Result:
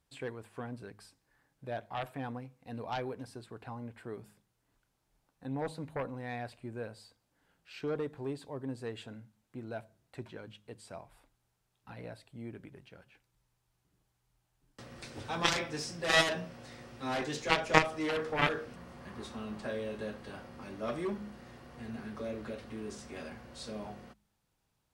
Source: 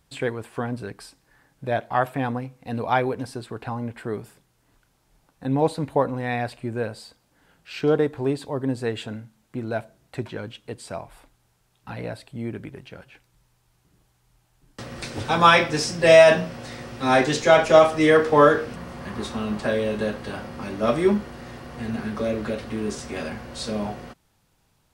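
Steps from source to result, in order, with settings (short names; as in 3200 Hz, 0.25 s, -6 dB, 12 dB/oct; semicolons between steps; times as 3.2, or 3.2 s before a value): de-hum 51.88 Hz, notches 4; added harmonics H 3 -7 dB, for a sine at -1 dBFS; gain -3.5 dB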